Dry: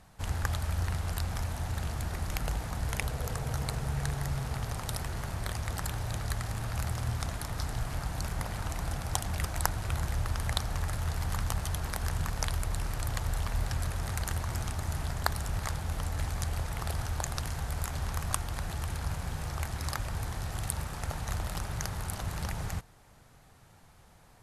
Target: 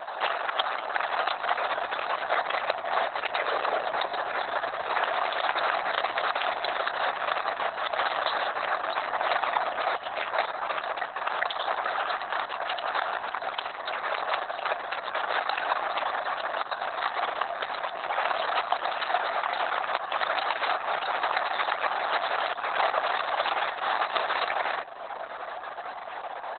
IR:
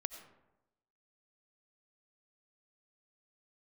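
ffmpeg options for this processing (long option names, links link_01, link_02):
-filter_complex "[0:a]aeval=exprs='val(0)+0.00126*(sin(2*PI*50*n/s)+sin(2*PI*2*50*n/s)/2+sin(2*PI*3*50*n/s)/3+sin(2*PI*4*50*n/s)/4+sin(2*PI*5*50*n/s)/5)':channel_layout=same,highshelf=frequency=6800:gain=2.5,asplit=2[link_01][link_02];[link_02]adelay=109,lowpass=frequency=2200:poles=1,volume=-18dB,asplit=2[link_03][link_04];[link_04]adelay=109,lowpass=frequency=2200:poles=1,volume=0.43,asplit=2[link_05][link_06];[link_06]adelay=109,lowpass=frequency=2200:poles=1,volume=0.43,asplit=2[link_07][link_08];[link_08]adelay=109,lowpass=frequency=2200:poles=1,volume=0.43[link_09];[link_01][link_03][link_05][link_07][link_09]amix=inputs=5:normalize=0,acompressor=threshold=-43dB:ratio=12,asplit=2[link_10][link_11];[1:a]atrim=start_sample=2205[link_12];[link_11][link_12]afir=irnorm=-1:irlink=0,volume=8.5dB[link_13];[link_10][link_13]amix=inputs=2:normalize=0,afftdn=noise_reduction=13:noise_floor=-51,aeval=exprs='clip(val(0),-1,0.0531)':channel_layout=same,asetrate=40517,aresample=44100,highpass=frequency=560:width=0.5412,highpass=frequency=560:width=1.3066,alimiter=level_in=26dB:limit=-1dB:release=50:level=0:latency=1,volume=-5dB" -ar 48000 -c:a libopus -b:a 6k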